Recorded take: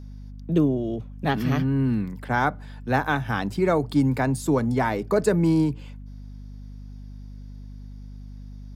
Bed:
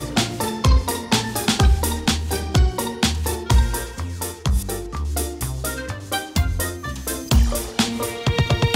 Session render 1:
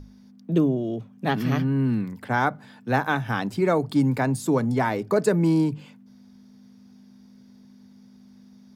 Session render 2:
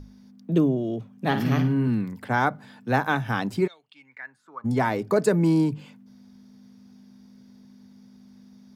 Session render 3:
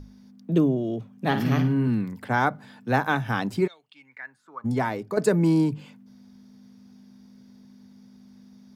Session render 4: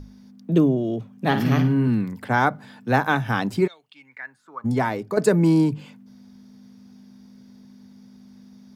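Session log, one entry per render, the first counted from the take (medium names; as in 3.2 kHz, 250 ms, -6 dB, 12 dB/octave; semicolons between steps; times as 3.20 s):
hum notches 50/100/150 Hz
1.25–1.88 s: flutter echo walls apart 9.3 m, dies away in 0.37 s; 3.66–4.64 s: band-pass filter 3.8 kHz -> 1.1 kHz, Q 9.6
4.61–5.17 s: fade out, to -8.5 dB
trim +3 dB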